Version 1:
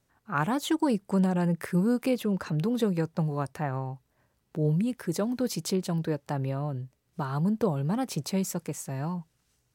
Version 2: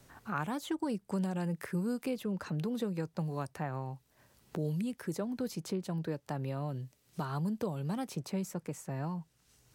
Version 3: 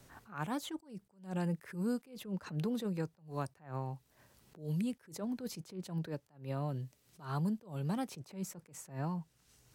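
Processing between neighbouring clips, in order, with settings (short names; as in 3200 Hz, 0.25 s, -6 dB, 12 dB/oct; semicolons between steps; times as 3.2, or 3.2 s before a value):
three-band squash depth 70%; gain -8 dB
attack slew limiter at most 160 dB/s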